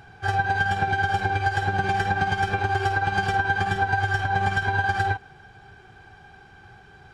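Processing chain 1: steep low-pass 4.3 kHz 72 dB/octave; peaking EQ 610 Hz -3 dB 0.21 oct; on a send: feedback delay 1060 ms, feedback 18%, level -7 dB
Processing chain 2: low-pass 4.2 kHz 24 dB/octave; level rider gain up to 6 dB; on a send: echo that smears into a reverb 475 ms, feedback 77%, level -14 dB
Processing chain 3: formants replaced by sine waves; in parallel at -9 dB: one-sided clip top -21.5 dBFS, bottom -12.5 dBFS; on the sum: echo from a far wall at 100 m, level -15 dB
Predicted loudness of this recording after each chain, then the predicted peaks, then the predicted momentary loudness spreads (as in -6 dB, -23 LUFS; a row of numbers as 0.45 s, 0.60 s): -23.5 LUFS, -18.5 LUFS, -20.5 LUFS; -8.5 dBFS, -3.5 dBFS, -7.0 dBFS; 9 LU, 15 LU, 6 LU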